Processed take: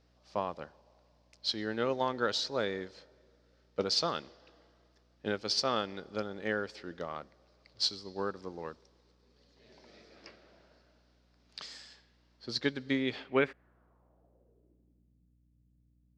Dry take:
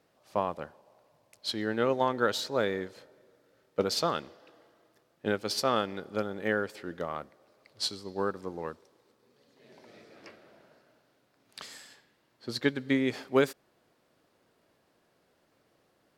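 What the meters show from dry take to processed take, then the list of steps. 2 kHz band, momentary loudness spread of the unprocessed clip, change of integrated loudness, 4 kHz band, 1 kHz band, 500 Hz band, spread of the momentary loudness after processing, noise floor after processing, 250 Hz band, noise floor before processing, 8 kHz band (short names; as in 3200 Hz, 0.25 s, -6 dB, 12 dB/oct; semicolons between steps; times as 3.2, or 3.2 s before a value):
-3.0 dB, 16 LU, -3.0 dB, +1.5 dB, -4.0 dB, -4.5 dB, 15 LU, -69 dBFS, -4.5 dB, -71 dBFS, -2.5 dB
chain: low-pass sweep 5200 Hz -> 140 Hz, 12.89–15.34; hum 60 Hz, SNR 31 dB; gain -4.5 dB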